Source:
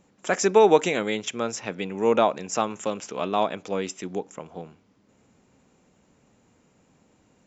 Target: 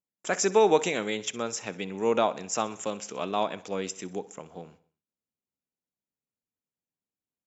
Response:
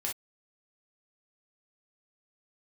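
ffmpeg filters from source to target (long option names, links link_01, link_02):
-af "agate=range=-34dB:threshold=-49dB:ratio=16:detection=peak,highshelf=frequency=4400:gain=6.5,aecho=1:1:63|126|189|252:0.119|0.0618|0.0321|0.0167,volume=-4.5dB"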